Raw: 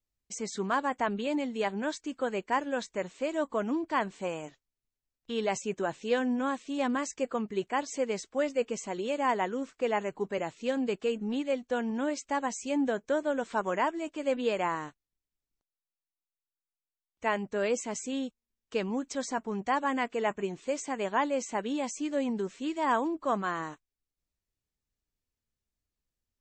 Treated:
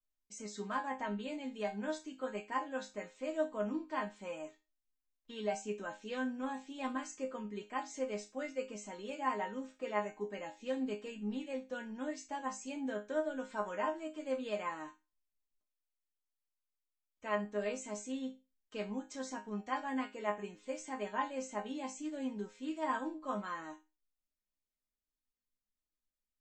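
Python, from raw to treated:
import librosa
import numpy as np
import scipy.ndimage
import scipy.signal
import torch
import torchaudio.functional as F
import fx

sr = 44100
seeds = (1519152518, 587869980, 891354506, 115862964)

y = fx.resonator_bank(x, sr, root=56, chord='major', decay_s=0.26)
y = F.gain(torch.from_numpy(y), 7.5).numpy()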